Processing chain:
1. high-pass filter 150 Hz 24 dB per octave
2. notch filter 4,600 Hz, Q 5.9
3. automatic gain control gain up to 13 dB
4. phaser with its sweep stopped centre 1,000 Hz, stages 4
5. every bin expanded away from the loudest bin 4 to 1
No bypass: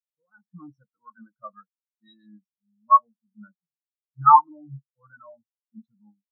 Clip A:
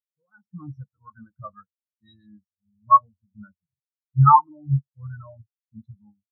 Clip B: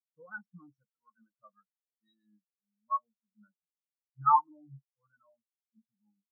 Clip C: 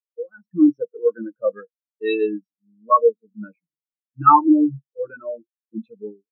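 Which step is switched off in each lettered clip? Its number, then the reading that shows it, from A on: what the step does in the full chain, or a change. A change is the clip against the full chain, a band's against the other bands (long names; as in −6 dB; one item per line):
1, change in crest factor −2.0 dB
3, change in momentary loudness spread +17 LU
4, change in momentary loudness spread +18 LU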